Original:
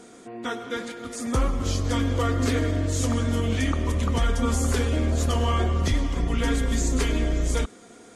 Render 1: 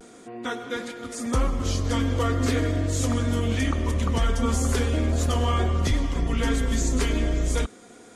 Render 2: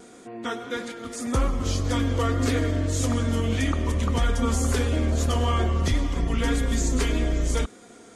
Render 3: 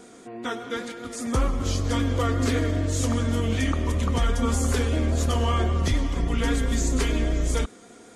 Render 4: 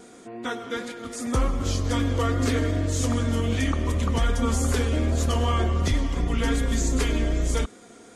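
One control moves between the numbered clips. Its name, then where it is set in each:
vibrato, rate: 0.41 Hz, 1.7 Hz, 5.1 Hz, 2.6 Hz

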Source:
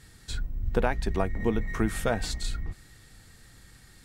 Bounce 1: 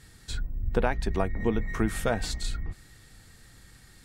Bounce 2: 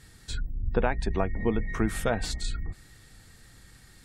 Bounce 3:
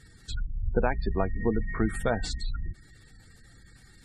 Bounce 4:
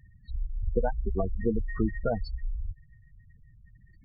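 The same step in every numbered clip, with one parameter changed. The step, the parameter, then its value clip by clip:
spectral gate, under each frame's peak: -55 dB, -40 dB, -25 dB, -10 dB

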